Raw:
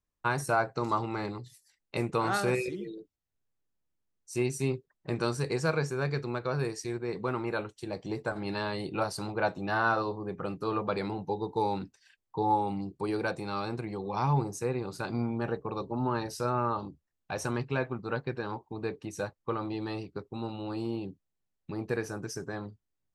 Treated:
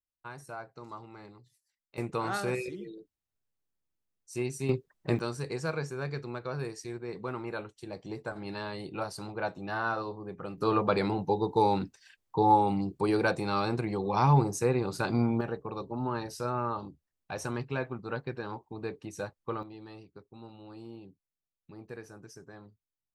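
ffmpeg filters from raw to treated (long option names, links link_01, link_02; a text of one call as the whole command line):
ffmpeg -i in.wav -af "asetnsamples=nb_out_samples=441:pad=0,asendcmd='1.98 volume volume -3.5dB;4.69 volume volume 4.5dB;5.19 volume volume -4.5dB;10.58 volume volume 4.5dB;15.41 volume volume -2.5dB;19.63 volume volume -12dB',volume=-15dB" out.wav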